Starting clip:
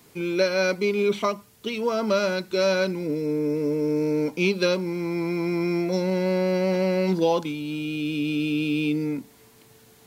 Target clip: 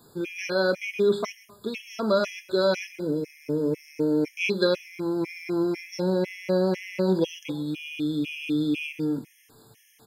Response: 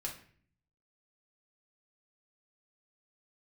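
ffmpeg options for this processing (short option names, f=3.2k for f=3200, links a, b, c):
-filter_complex "[0:a]aecho=1:1:128|256:0.15|0.0329,asplit=2[a][b];[1:a]atrim=start_sample=2205[c];[b][c]afir=irnorm=-1:irlink=0,volume=-8.5dB[d];[a][d]amix=inputs=2:normalize=0,afftfilt=real='re*gt(sin(2*PI*2*pts/sr)*(1-2*mod(floor(b*sr/1024/1700),2)),0)':imag='im*gt(sin(2*PI*2*pts/sr)*(1-2*mod(floor(b*sr/1024/1700),2)),0)':win_size=1024:overlap=0.75,volume=-1.5dB"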